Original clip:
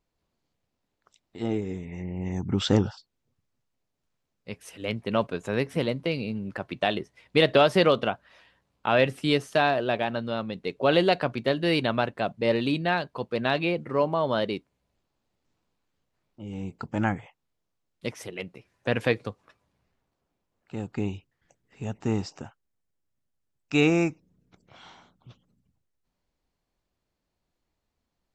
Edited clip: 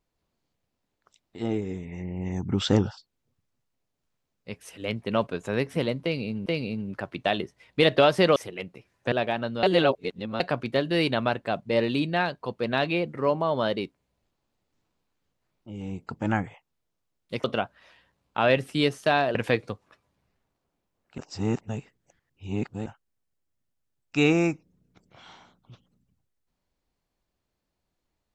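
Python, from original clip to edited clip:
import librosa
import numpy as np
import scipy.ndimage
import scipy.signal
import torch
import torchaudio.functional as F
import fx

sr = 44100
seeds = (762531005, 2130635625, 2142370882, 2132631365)

y = fx.edit(x, sr, fx.repeat(start_s=6.03, length_s=0.43, count=2),
    fx.swap(start_s=7.93, length_s=1.91, other_s=18.16, other_length_s=0.76),
    fx.reverse_span(start_s=10.35, length_s=0.77),
    fx.reverse_span(start_s=20.75, length_s=1.68), tone=tone)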